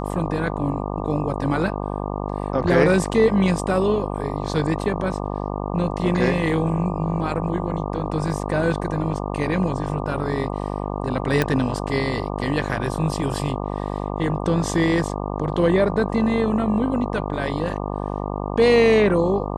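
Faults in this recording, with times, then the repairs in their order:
buzz 50 Hz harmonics 24 -27 dBFS
11.42 s: pop -6 dBFS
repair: de-click; de-hum 50 Hz, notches 24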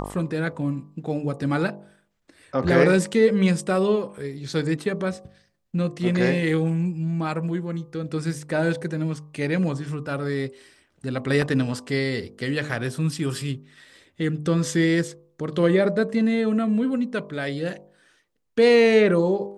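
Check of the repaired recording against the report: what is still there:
nothing left

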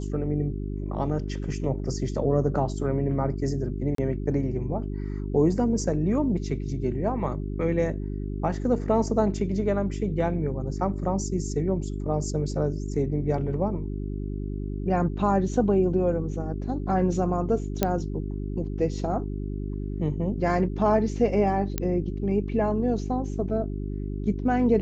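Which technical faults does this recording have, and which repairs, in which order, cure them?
hum 50 Hz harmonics 8 -31 dBFS
3.95–3.98 s: dropout 33 ms
17.83 s: pop -7 dBFS
21.78 s: pop -11 dBFS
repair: de-click; de-hum 50 Hz, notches 8; interpolate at 3.95 s, 33 ms

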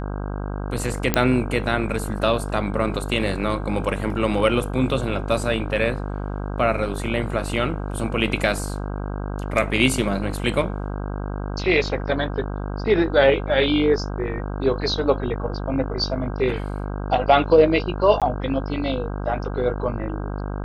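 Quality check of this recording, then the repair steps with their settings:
buzz 50 Hz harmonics 32 -28 dBFS
1.14 s: pop -2 dBFS
18.20–18.22 s: dropout 17 ms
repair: de-click; de-hum 50 Hz, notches 32; interpolate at 18.20 s, 17 ms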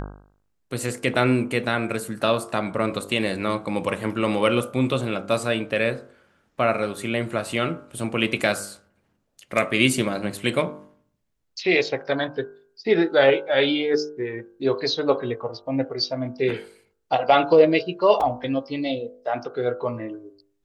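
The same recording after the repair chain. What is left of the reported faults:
nothing left

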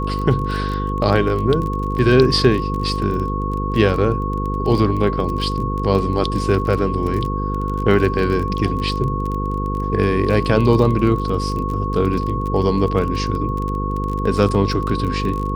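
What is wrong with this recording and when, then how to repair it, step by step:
buzz 50 Hz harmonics 10 -23 dBFS
crackle 26 per s -24 dBFS
whine 1.1 kHz -25 dBFS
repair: de-click; band-stop 1.1 kHz, Q 30; de-hum 50 Hz, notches 10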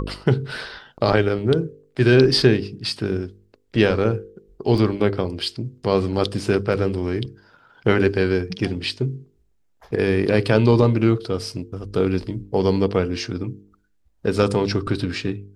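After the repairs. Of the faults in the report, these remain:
nothing left

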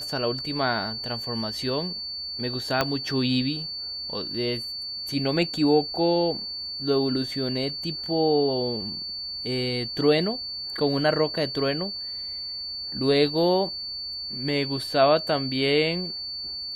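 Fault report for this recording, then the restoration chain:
whine 4.5 kHz -31 dBFS
2.81 s: pop -7 dBFS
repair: de-click; band-stop 4.5 kHz, Q 30

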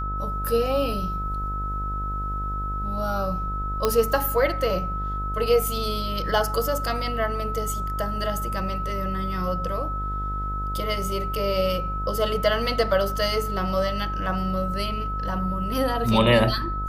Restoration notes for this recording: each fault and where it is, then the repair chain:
buzz 50 Hz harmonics 29 -30 dBFS
whine 1.3 kHz -29 dBFS
3.85 s: pop -7 dBFS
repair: de-click; de-hum 50 Hz, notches 29; band-stop 1.3 kHz, Q 30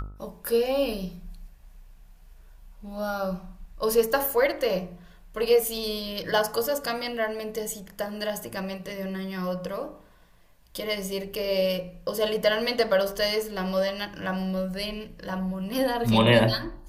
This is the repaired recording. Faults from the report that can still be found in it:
nothing left

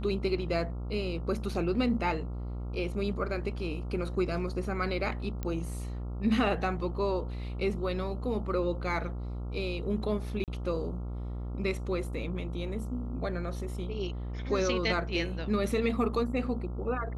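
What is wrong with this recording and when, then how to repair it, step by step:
buzz 60 Hz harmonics 23 -36 dBFS
5.43 s: pop -21 dBFS
10.44–10.48 s: dropout 38 ms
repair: de-click; de-hum 60 Hz, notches 23; interpolate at 10.44 s, 38 ms

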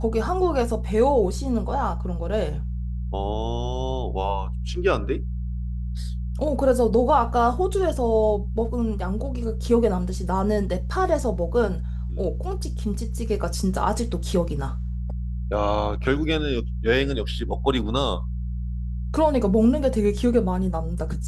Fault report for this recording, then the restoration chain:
hum 60 Hz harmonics 3 -28 dBFS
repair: de-hum 60 Hz, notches 3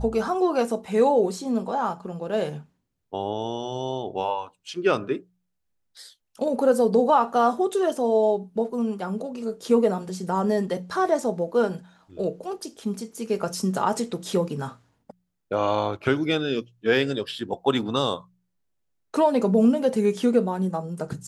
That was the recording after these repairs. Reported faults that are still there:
nothing left

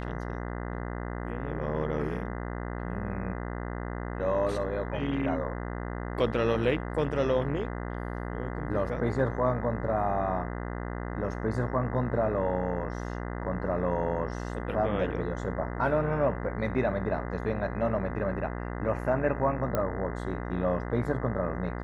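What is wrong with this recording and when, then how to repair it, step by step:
buzz 60 Hz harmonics 34 -35 dBFS
19.75 s: pop -15 dBFS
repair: de-click; de-hum 60 Hz, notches 34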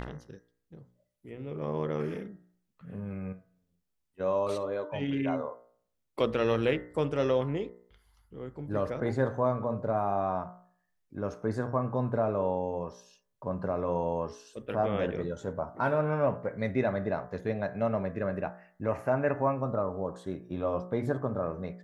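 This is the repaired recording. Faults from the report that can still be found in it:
nothing left

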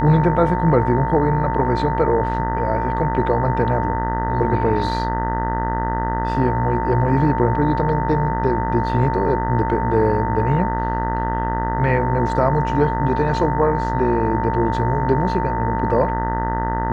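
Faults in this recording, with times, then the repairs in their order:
buzz 60 Hz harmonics 33 -24 dBFS
whine 900 Hz -23 dBFS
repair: de-hum 60 Hz, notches 33; band-stop 900 Hz, Q 30

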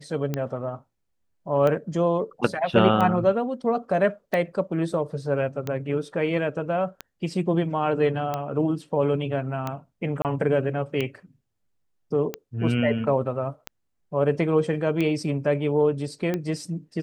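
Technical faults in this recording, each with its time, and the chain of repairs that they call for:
tick 45 rpm -14 dBFS
10.22–10.25 s: dropout 28 ms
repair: de-click; interpolate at 10.22 s, 28 ms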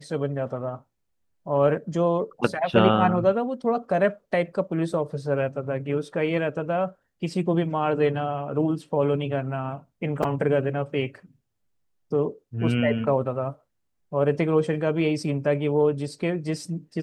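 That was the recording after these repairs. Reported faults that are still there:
nothing left

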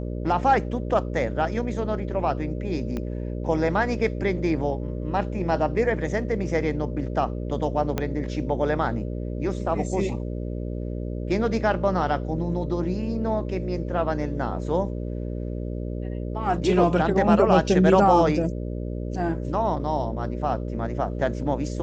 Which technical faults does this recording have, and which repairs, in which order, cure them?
buzz 60 Hz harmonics 10 -30 dBFS
2.97 s: pop -18 dBFS
7.98 s: pop -11 dBFS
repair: de-click; de-hum 60 Hz, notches 10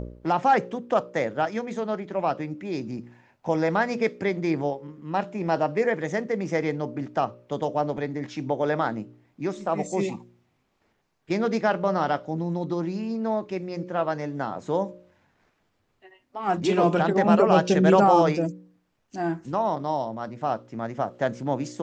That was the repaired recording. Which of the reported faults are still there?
2.97 s: pop
7.98 s: pop

